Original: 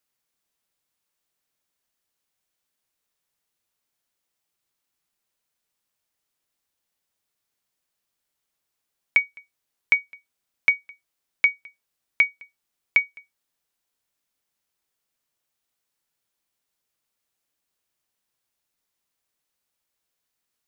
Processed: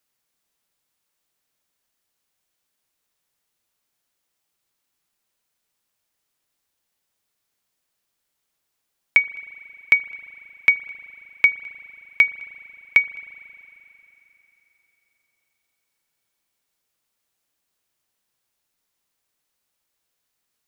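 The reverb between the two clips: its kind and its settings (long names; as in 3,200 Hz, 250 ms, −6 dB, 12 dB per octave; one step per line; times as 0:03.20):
spring reverb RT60 3.6 s, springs 38 ms, chirp 55 ms, DRR 15.5 dB
level +3.5 dB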